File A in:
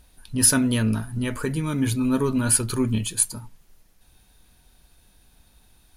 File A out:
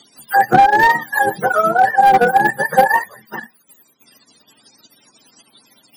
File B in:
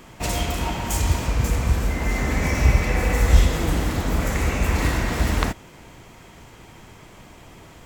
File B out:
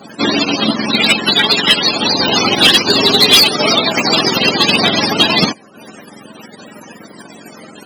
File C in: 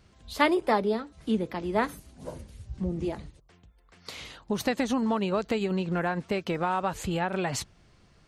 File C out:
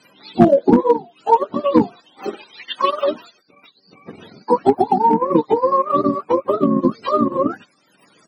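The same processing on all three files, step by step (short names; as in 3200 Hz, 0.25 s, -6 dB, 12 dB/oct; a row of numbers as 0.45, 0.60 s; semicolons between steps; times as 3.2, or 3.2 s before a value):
spectrum mirrored in octaves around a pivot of 450 Hz; HPF 210 Hz 24 dB/oct; hard clip -19.5 dBFS; transient shaper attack +5 dB, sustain -7 dB; normalise peaks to -1.5 dBFS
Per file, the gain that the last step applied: +13.0, +15.0, +13.0 dB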